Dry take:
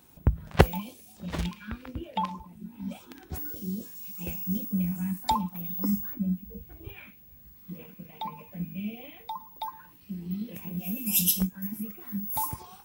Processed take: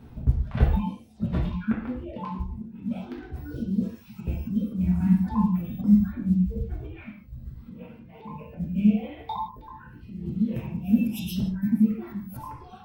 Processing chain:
RIAA equalisation playback
reverb reduction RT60 0.99 s
parametric band 7,000 Hz −6.5 dB 0.47 octaves
floating-point word with a short mantissa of 6 bits
volume swells 191 ms
convolution reverb, pre-delay 3 ms, DRR −5 dB
level +2 dB

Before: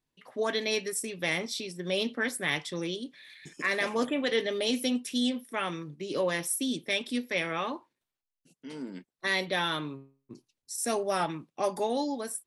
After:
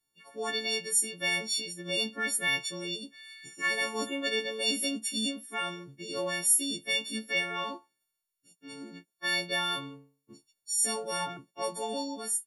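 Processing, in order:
every partial snapped to a pitch grid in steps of 4 semitones
0:10.79–0:11.37: hum removal 69.79 Hz, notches 26
level −5.5 dB

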